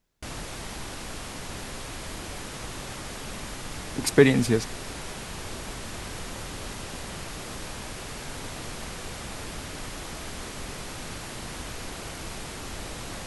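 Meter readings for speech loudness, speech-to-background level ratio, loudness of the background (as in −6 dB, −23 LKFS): −22.0 LKFS, 15.0 dB, −37.0 LKFS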